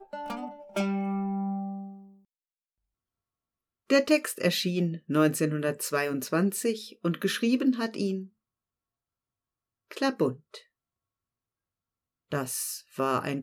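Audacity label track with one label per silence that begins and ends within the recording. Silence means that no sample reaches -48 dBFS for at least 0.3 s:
2.100000	3.900000	silence
8.270000	9.910000	silence
10.610000	12.320000	silence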